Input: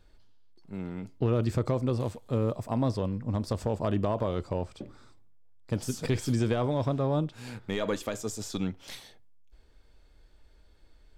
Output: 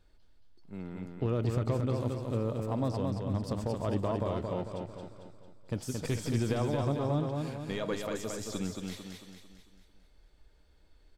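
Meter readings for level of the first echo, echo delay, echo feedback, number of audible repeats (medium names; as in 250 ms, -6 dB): -4.0 dB, 224 ms, 48%, 5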